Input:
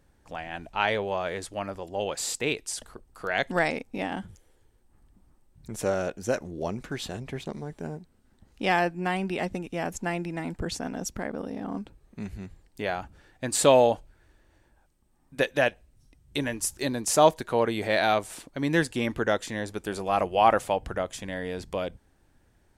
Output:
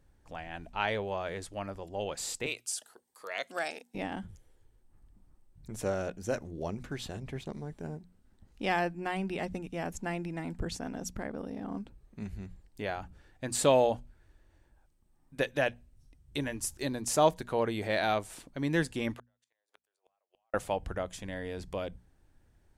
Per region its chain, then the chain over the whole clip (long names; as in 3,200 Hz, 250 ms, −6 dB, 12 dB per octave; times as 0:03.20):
0:02.46–0:03.95: high-pass filter 540 Hz + high-shelf EQ 5,600 Hz +7 dB + phaser whose notches keep moving one way rising 1.1 Hz
0:19.14–0:20.54: high-pass filter 510 Hz 24 dB per octave + downward compressor 2.5 to 1, threshold −35 dBFS + gate with flip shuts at −28 dBFS, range −42 dB
whole clip: low-shelf EQ 140 Hz +7.5 dB; mains-hum notches 60/120/180/240 Hz; level −6 dB